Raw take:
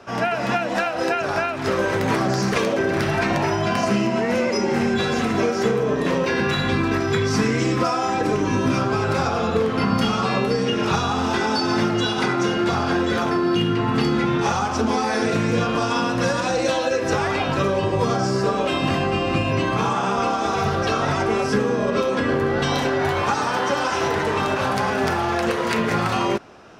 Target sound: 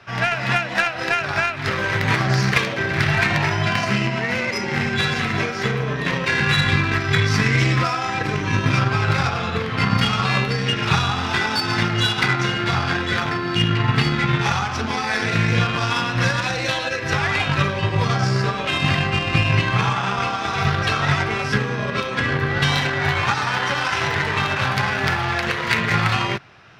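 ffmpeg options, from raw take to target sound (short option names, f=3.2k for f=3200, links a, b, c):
-af "equalizer=f=125:t=o:w=1:g=11,equalizer=f=250:t=o:w=1:g=-6,equalizer=f=500:t=o:w=1:g=-5,equalizer=f=2k:t=o:w=1:g=9,equalizer=f=4k:t=o:w=1:g=6,equalizer=f=8k:t=o:w=1:g=-5,aeval=exprs='0.668*(cos(1*acos(clip(val(0)/0.668,-1,1)))-cos(1*PI/2))+0.0376*(cos(7*acos(clip(val(0)/0.668,-1,1)))-cos(7*PI/2))':c=same"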